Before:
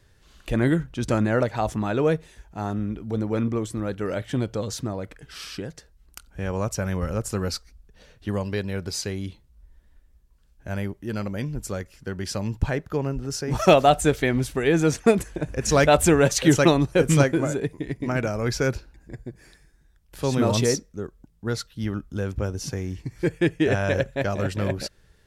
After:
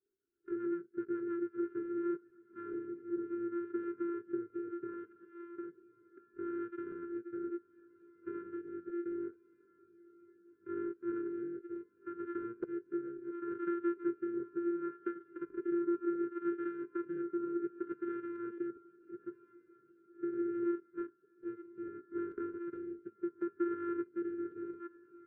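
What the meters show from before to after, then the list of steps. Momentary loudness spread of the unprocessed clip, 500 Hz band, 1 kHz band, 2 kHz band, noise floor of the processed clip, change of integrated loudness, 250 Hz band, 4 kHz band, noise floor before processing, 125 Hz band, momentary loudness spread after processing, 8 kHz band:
17 LU, -15.5 dB, -20.0 dB, -23.5 dB, -69 dBFS, -15.5 dB, -11.5 dB, under -40 dB, -58 dBFS, -38.0 dB, 11 LU, under -40 dB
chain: sample sorter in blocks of 128 samples; added noise brown -43 dBFS; in parallel at -6 dB: soft clip -20 dBFS, distortion -8 dB; on the sum: air absorption 260 m; compressor 10:1, threshold -25 dBFS, peak gain reduction 15 dB; rotary speaker horn 7.5 Hz, later 0.7 Hz, at 1.13; double band-pass 760 Hz, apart 1.9 oct; bell 690 Hz -14.5 dB 0.21 oct; spectral noise reduction 11 dB; on a send: diffused feedback echo 1.288 s, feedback 59%, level -14.5 dB; on the sum: crackling interface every 0.22 s, samples 256, repeat, from 0.75; spectral expander 1.5:1; gain +2.5 dB

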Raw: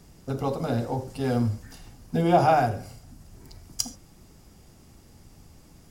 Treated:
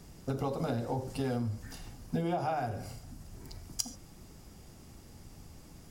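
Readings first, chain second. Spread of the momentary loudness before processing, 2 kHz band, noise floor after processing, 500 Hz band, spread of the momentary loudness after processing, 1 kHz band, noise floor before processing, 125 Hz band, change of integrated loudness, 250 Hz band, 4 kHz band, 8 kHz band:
17 LU, -10.0 dB, -53 dBFS, -9.5 dB, 20 LU, -12.0 dB, -53 dBFS, -7.5 dB, -9.5 dB, -8.0 dB, -6.5 dB, -5.0 dB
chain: compressor 10:1, threshold -29 dBFS, peak gain reduction 15.5 dB

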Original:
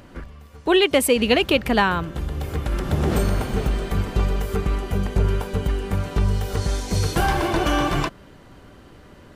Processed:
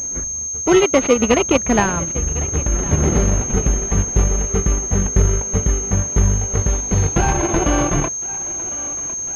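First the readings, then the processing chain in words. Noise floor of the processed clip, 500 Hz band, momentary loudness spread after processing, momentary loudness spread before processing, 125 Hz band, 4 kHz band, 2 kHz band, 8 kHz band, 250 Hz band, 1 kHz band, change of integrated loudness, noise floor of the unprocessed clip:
-25 dBFS, +3.5 dB, 7 LU, 9 LU, +4.5 dB, -4.5 dB, -0.5 dB, +18.5 dB, +4.0 dB, +1.5 dB, +4.5 dB, -47 dBFS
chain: in parallel at -3 dB: sample-rate reducer 1700 Hz, jitter 0%; on the sum: thinning echo 1.055 s, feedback 66%, high-pass 480 Hz, level -15 dB; transient shaper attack +1 dB, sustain -8 dB; pulse-width modulation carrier 6400 Hz

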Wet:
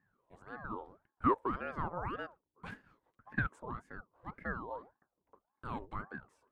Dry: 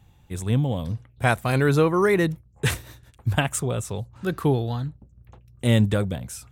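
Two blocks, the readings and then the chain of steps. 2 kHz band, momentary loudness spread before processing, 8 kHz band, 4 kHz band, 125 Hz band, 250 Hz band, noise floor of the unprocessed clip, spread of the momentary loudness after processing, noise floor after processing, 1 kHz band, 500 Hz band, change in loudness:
-13.0 dB, 13 LU, under -40 dB, -27.5 dB, -23.5 dB, -17.5 dB, -56 dBFS, 17 LU, under -85 dBFS, -8.0 dB, -19.0 dB, -16.0 dB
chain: band-pass 720 Hz, Q 8.3; ring modulator with a swept carrier 580 Hz, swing 70%, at 1.8 Hz; gain +2.5 dB

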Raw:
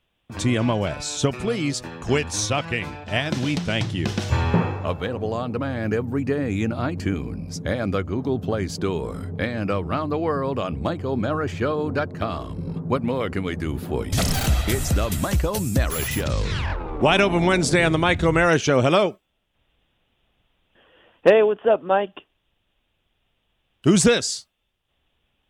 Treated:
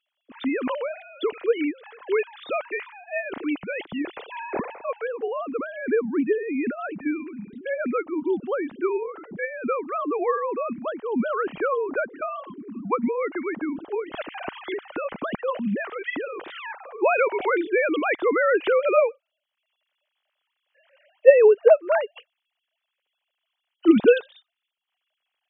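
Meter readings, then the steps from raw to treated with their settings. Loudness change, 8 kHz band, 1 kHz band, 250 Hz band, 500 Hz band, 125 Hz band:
-1.5 dB, under -40 dB, -2.5 dB, -3.0 dB, +1.0 dB, -22.5 dB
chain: sine-wave speech; gain -2 dB

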